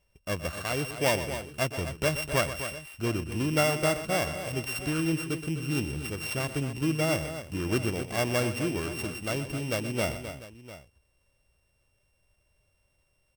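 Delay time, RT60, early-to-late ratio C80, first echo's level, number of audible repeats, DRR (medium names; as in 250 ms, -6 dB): 123 ms, no reverb, no reverb, -12.5 dB, 3, no reverb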